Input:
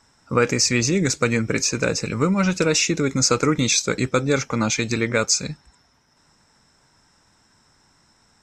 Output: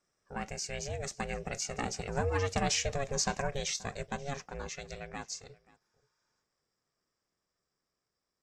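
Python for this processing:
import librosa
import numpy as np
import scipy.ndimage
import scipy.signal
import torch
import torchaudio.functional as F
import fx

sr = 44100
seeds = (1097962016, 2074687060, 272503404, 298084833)

p1 = fx.doppler_pass(x, sr, speed_mps=8, closest_m=6.6, pass_at_s=2.57)
p2 = p1 * np.sin(2.0 * np.pi * 280.0 * np.arange(len(p1)) / sr)
p3 = p2 + fx.echo_single(p2, sr, ms=530, db=-23.0, dry=0)
p4 = fx.spec_repair(p3, sr, seeds[0], start_s=5.83, length_s=0.57, low_hz=850.0, high_hz=10000.0, source='before')
y = p4 * 10.0 ** (-8.0 / 20.0)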